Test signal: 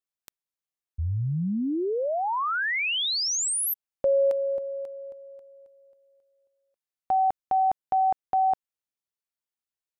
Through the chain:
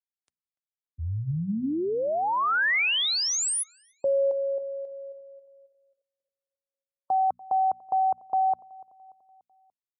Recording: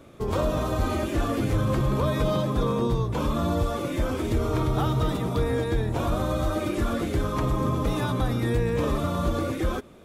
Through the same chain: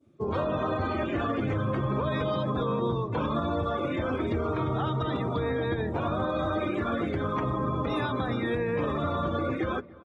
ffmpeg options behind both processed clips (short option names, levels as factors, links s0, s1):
-filter_complex "[0:a]adynamicequalizer=threshold=0.0141:dfrequency=1800:dqfactor=0.76:tfrequency=1800:tqfactor=0.76:attack=5:release=100:ratio=0.417:range=2:mode=boostabove:tftype=bell,afftdn=nr=20:nf=-37,highpass=f=76:w=0.5412,highpass=f=76:w=1.3066,bandreject=f=60:t=h:w=6,bandreject=f=120:t=h:w=6,bandreject=f=180:t=h:w=6,bandreject=f=240:t=h:w=6,asplit=2[s0][s1];[s1]adelay=291,lowpass=f=2300:p=1,volume=0.075,asplit=2[s2][s3];[s3]adelay=291,lowpass=f=2300:p=1,volume=0.52,asplit=2[s4][s5];[s5]adelay=291,lowpass=f=2300:p=1,volume=0.52,asplit=2[s6][s7];[s7]adelay=291,lowpass=f=2300:p=1,volume=0.52[s8];[s0][s2][s4][s6][s8]amix=inputs=5:normalize=0,alimiter=limit=0.112:level=0:latency=1:release=61,lowshelf=f=100:g=-2" -ar 48000 -c:a libmp3lame -b:a 40k